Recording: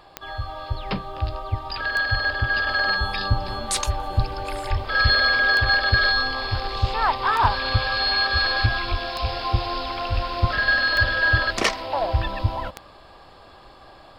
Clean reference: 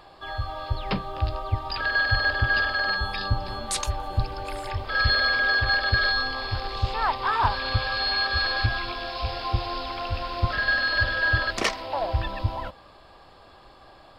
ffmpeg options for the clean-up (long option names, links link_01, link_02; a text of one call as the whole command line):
ffmpeg -i in.wav -filter_complex "[0:a]adeclick=threshold=4,asplit=3[link_01][link_02][link_03];[link_01]afade=type=out:start_time=4.69:duration=0.02[link_04];[link_02]highpass=frequency=140:width=0.5412,highpass=frequency=140:width=1.3066,afade=type=in:start_time=4.69:duration=0.02,afade=type=out:start_time=4.81:duration=0.02[link_05];[link_03]afade=type=in:start_time=4.81:duration=0.02[link_06];[link_04][link_05][link_06]amix=inputs=3:normalize=0,asplit=3[link_07][link_08][link_09];[link_07]afade=type=out:start_time=8.9:duration=0.02[link_10];[link_08]highpass=frequency=140:width=0.5412,highpass=frequency=140:width=1.3066,afade=type=in:start_time=8.9:duration=0.02,afade=type=out:start_time=9.02:duration=0.02[link_11];[link_09]afade=type=in:start_time=9.02:duration=0.02[link_12];[link_10][link_11][link_12]amix=inputs=3:normalize=0,asplit=3[link_13][link_14][link_15];[link_13]afade=type=out:start_time=10.14:duration=0.02[link_16];[link_14]highpass=frequency=140:width=0.5412,highpass=frequency=140:width=1.3066,afade=type=in:start_time=10.14:duration=0.02,afade=type=out:start_time=10.26:duration=0.02[link_17];[link_15]afade=type=in:start_time=10.26:duration=0.02[link_18];[link_16][link_17][link_18]amix=inputs=3:normalize=0,asetnsamples=nb_out_samples=441:pad=0,asendcmd='2.67 volume volume -3.5dB',volume=0dB" out.wav